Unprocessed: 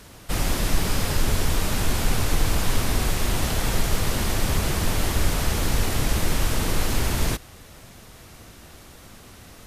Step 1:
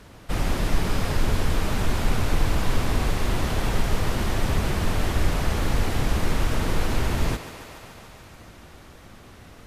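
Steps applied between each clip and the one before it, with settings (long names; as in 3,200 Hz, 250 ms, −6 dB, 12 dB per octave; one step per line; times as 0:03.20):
high-shelf EQ 4,300 Hz −11.5 dB
on a send: feedback echo with a high-pass in the loop 143 ms, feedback 80%, high-pass 220 Hz, level −11.5 dB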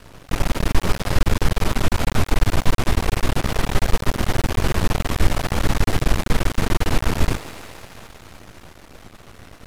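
half-wave rectification
level +7 dB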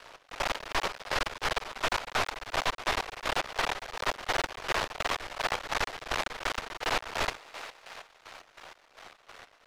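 gate pattern "xx...xx.." 189 BPM −12 dB
three-way crossover with the lows and the highs turned down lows −23 dB, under 500 Hz, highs −13 dB, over 6,300 Hz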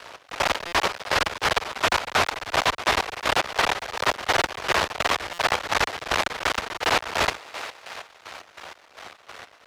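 high-pass filter 56 Hz
buffer that repeats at 0:00.67/0:05.33, samples 256, times 8
level +8 dB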